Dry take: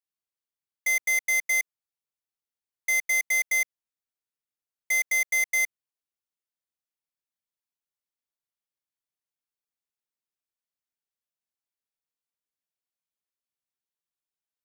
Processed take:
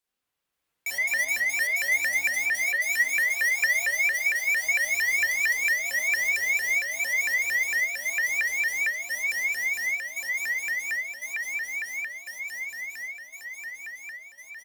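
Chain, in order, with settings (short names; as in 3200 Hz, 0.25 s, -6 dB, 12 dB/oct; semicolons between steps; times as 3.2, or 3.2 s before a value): regenerating reverse delay 0.527 s, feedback 79%, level 0 dB; in parallel at +1 dB: compressor, threshold -35 dBFS, peak gain reduction 16 dB; on the sum: soft clip -28 dBFS, distortion -7 dB; on a send: tapped delay 56/177/256 ms -11.5/-16.5/-10 dB; on the sum: spring tank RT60 1.1 s, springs 34/38 ms, chirp 30 ms, DRR -5.5 dB; shaped vibrato saw up 4.4 Hz, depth 250 cents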